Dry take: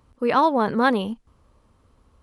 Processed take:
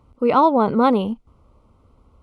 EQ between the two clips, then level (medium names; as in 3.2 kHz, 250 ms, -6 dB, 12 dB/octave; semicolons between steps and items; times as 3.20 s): Butterworth band-stop 1.7 kHz, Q 3.4; treble shelf 2.7 kHz -11 dB; +4.5 dB